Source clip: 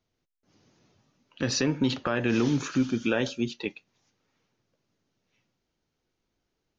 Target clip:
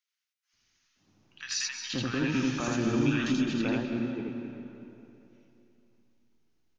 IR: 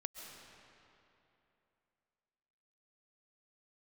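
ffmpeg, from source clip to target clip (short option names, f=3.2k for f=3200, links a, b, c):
-filter_complex "[0:a]equalizer=f=125:t=o:w=1:g=-3,equalizer=f=500:t=o:w=1:g=-9,equalizer=f=4k:t=o:w=1:g=-3,acrossover=split=1400[a][b];[a]adelay=530[c];[c][b]amix=inputs=2:normalize=0,asplit=2[d][e];[1:a]atrim=start_sample=2205,adelay=82[f];[e][f]afir=irnorm=-1:irlink=0,volume=3dB[g];[d][g]amix=inputs=2:normalize=0,volume=-1.5dB"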